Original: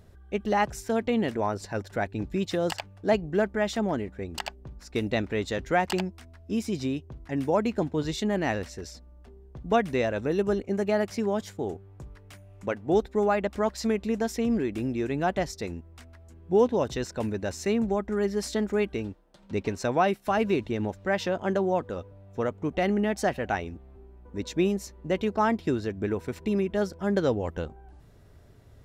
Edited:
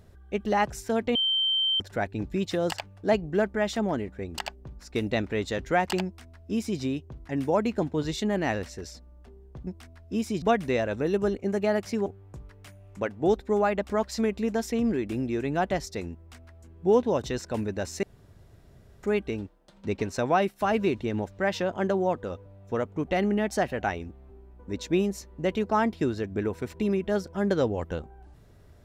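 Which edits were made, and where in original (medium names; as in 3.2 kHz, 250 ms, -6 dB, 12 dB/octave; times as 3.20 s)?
1.15–1.80 s: bleep 3.12 kHz -22 dBFS
6.05–6.80 s: copy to 9.67 s
11.31–11.72 s: delete
17.69–18.69 s: room tone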